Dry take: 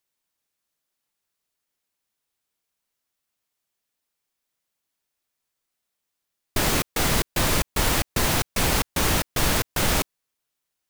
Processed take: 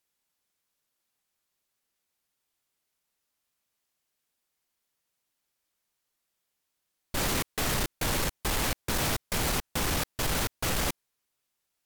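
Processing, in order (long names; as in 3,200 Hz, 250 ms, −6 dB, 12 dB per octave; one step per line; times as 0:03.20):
brickwall limiter −13 dBFS, peak gain reduction 5 dB
soft clipping −24.5 dBFS, distortion −10 dB
wrong playback speed 48 kHz file played as 44.1 kHz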